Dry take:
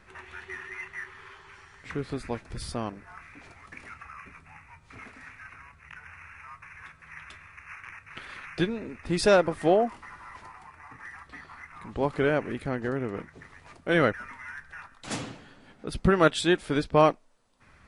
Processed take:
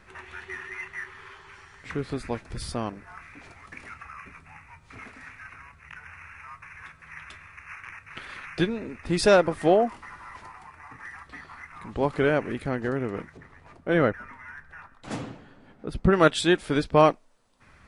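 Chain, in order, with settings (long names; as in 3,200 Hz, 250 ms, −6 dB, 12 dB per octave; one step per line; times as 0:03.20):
0:13.37–0:16.13: high-shelf EQ 2,200 Hz −11.5 dB
level +2 dB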